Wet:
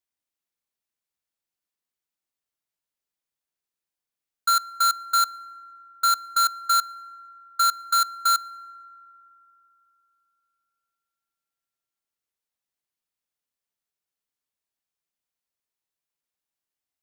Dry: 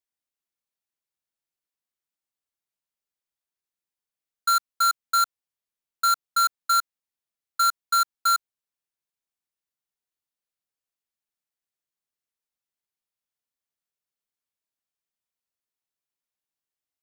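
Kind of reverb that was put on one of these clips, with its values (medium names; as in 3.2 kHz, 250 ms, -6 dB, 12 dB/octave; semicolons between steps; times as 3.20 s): FDN reverb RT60 3.2 s, low-frequency decay 1.2×, high-frequency decay 0.3×, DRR 18.5 dB; trim +1 dB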